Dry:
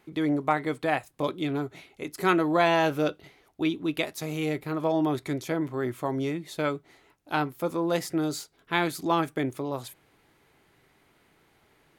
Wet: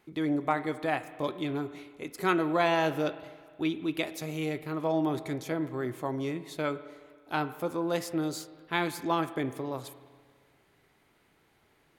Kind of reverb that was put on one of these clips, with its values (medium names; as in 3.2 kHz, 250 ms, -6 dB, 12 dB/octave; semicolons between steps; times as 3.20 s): spring tank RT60 1.7 s, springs 31/51 ms, chirp 25 ms, DRR 13 dB; trim -3.5 dB